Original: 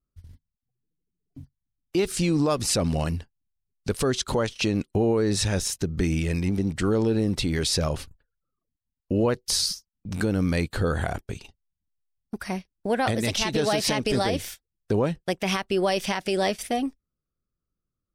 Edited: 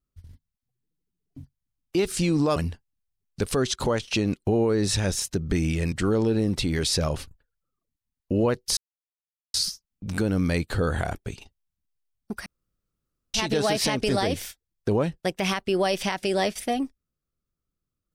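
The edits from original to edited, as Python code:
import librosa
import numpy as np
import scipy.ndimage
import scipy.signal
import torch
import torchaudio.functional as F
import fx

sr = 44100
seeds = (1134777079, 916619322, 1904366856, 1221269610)

y = fx.edit(x, sr, fx.cut(start_s=2.56, length_s=0.48),
    fx.cut(start_s=6.4, length_s=0.32),
    fx.insert_silence(at_s=9.57, length_s=0.77),
    fx.room_tone_fill(start_s=12.49, length_s=0.88), tone=tone)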